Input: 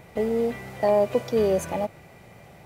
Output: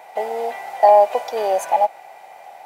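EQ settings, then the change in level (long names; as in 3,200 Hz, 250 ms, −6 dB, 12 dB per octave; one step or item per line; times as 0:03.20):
high-pass with resonance 780 Hz, resonance Q 5.2
parametric band 1,200 Hz −6 dB 0.28 octaves
+3.5 dB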